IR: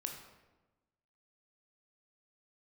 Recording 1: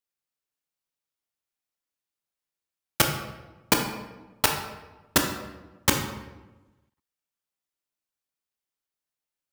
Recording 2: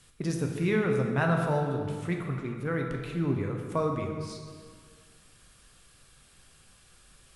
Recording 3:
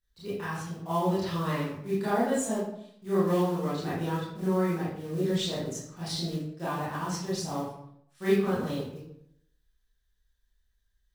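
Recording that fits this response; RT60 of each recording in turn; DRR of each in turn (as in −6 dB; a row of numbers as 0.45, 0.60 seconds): 1; 1.1, 1.8, 0.75 seconds; 2.5, 1.5, −10.5 decibels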